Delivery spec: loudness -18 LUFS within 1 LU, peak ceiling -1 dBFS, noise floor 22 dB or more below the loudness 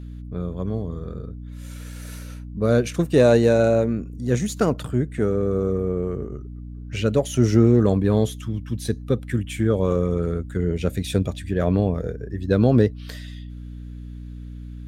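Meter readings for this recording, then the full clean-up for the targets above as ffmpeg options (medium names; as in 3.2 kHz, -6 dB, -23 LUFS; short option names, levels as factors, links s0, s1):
hum 60 Hz; highest harmonic 300 Hz; hum level -34 dBFS; loudness -22.0 LUFS; peak level -4.0 dBFS; loudness target -18.0 LUFS
-> -af "bandreject=f=60:t=h:w=6,bandreject=f=120:t=h:w=6,bandreject=f=180:t=h:w=6,bandreject=f=240:t=h:w=6,bandreject=f=300:t=h:w=6"
-af "volume=1.58,alimiter=limit=0.891:level=0:latency=1"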